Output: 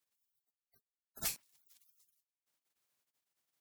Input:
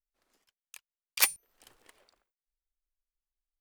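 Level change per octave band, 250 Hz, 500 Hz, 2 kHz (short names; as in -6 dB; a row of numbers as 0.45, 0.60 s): +0.5, -7.0, -17.5 dB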